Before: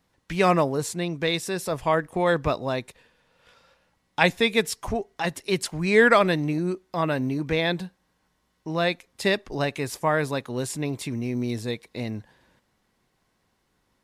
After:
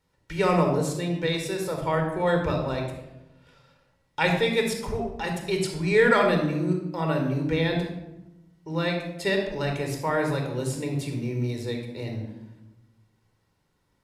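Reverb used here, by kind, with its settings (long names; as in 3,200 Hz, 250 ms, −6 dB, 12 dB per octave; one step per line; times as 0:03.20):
rectangular room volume 3,500 cubic metres, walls furnished, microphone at 4.5 metres
level −6 dB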